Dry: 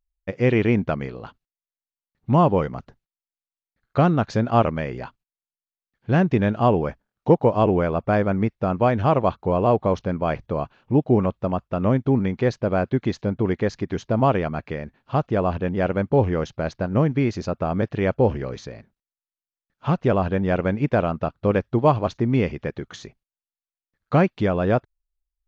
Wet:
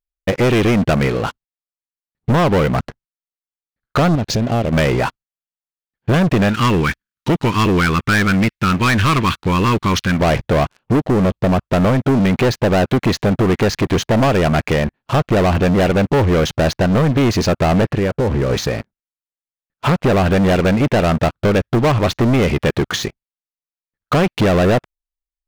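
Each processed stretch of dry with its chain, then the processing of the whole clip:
0:04.15–0:04.73: parametric band 1,300 Hz −14.5 dB 1.3 octaves + downward compressor 5 to 1, threshold −29 dBFS + one half of a high-frequency compander decoder only
0:06.49–0:10.20: Butterworth band-reject 650 Hz, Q 0.72 + tilt shelving filter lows −6 dB, about 930 Hz
0:10.99–0:11.59: parametric band 1,500 Hz −5.5 dB 2.2 octaves + downward compressor 3 to 1, threshold −20 dBFS
0:17.91–0:18.50: high-shelf EQ 3,100 Hz −11.5 dB + notch filter 650 Hz, Q 6.6 + downward compressor 8 to 1, threshold −28 dBFS
whole clip: downward compressor, threshold −20 dBFS; dynamic equaliser 2,200 Hz, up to +3 dB, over −45 dBFS, Q 0.88; leveller curve on the samples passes 5

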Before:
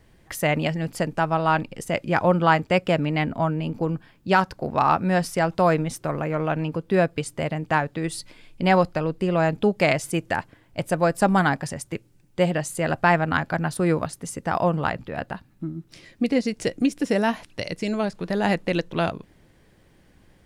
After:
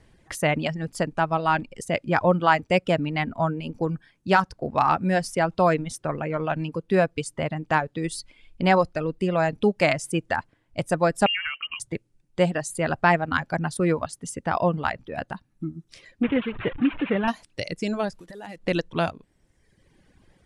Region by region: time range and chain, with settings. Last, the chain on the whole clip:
0:11.26–0:11.80: downward compressor 5 to 1, threshold −23 dBFS + voice inversion scrambler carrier 3,000 Hz
0:16.23–0:17.28: linear delta modulator 16 kbit/s, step −25.5 dBFS + dynamic equaliser 670 Hz, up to −6 dB, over −37 dBFS, Q 1.9
0:18.12–0:18.64: one scale factor per block 5 bits + downward compressor 4 to 1, threshold −35 dBFS
whole clip: reverb reduction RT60 1.1 s; Butterworth low-pass 11,000 Hz 36 dB per octave

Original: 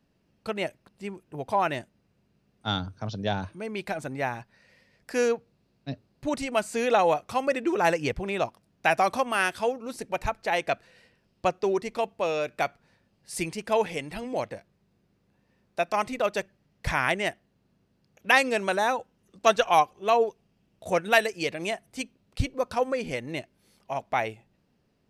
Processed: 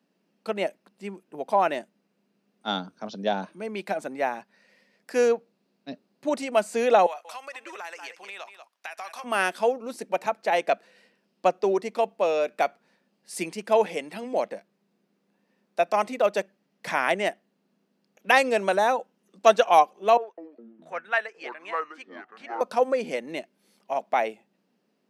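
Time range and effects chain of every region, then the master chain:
0:07.06–0:09.24: high-pass filter 1,100 Hz + single-tap delay 186 ms −14.5 dB + downward compressor 4 to 1, threshold −34 dBFS
0:20.17–0:22.61: resonant band-pass 1,500 Hz, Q 2 + delay with pitch and tempo change per echo 205 ms, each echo −6 semitones, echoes 3, each echo −6 dB
whole clip: Chebyshev high-pass filter 190 Hz, order 4; dynamic equaliser 620 Hz, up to +5 dB, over −37 dBFS, Q 1.2

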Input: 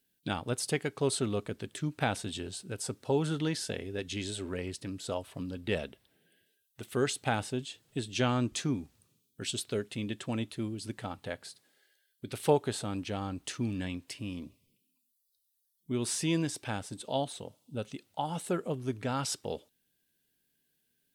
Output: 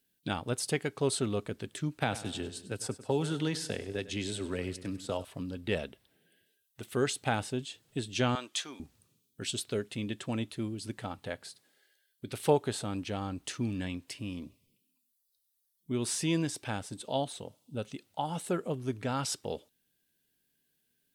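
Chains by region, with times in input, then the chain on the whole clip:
0:01.98–0:05.25: noise gate −41 dBFS, range −7 dB + repeating echo 99 ms, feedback 49%, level −16 dB + multiband upward and downward compressor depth 40%
0:08.35–0:08.80: high-pass filter 710 Hz + parametric band 3,300 Hz +6.5 dB 0.35 octaves
whole clip: no processing

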